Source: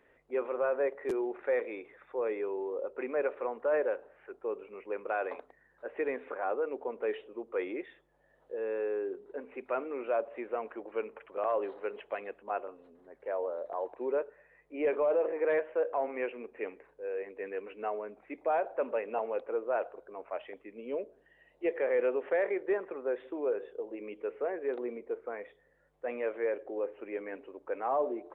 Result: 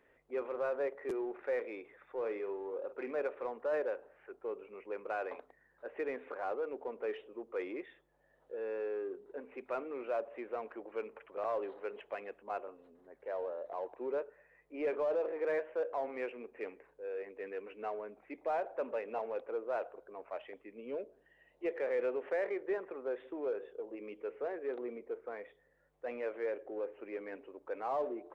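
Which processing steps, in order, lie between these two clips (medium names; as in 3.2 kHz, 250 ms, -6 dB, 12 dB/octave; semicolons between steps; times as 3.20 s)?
in parallel at -8 dB: saturation -37.5 dBFS, distortion -6 dB; 2.18–3.22 s: on the sum: doubling 48 ms -10 dB; trim -6 dB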